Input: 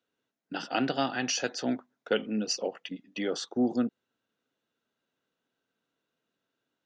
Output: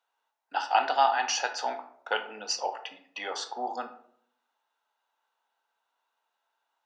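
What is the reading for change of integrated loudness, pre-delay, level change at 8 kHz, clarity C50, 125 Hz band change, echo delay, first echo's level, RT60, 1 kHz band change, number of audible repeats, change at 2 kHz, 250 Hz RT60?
+1.5 dB, 19 ms, +0.5 dB, 11.5 dB, under -25 dB, no echo, no echo, 0.65 s, +10.5 dB, no echo, +3.5 dB, 0.75 s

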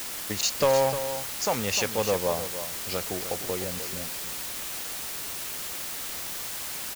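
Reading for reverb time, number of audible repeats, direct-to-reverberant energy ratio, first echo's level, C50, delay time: no reverb, 1, no reverb, -10.5 dB, no reverb, 304 ms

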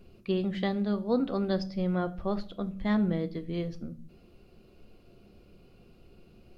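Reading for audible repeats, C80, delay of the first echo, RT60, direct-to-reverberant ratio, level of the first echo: no echo, 22.5 dB, no echo, 0.55 s, 10.0 dB, no echo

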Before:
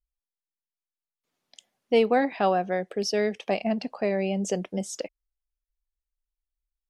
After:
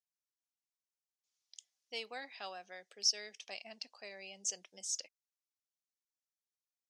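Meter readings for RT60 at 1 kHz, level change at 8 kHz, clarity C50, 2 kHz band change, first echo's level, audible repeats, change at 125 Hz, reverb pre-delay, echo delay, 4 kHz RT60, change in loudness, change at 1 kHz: no reverb, +1.0 dB, no reverb, -13.5 dB, no echo, no echo, under -30 dB, no reverb, no echo, no reverb, -13.0 dB, -22.5 dB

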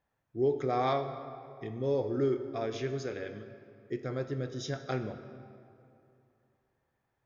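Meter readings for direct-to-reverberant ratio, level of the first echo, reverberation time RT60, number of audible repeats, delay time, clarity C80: 8.5 dB, no echo, 2.7 s, no echo, no echo, 10.5 dB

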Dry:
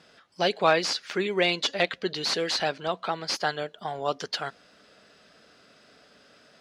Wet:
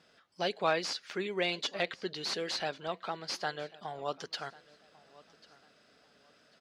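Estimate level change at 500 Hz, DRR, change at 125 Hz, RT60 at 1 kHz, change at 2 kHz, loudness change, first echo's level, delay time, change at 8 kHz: -8.0 dB, no reverb, -8.0 dB, no reverb, -8.0 dB, -8.0 dB, -22.0 dB, 1095 ms, -8.0 dB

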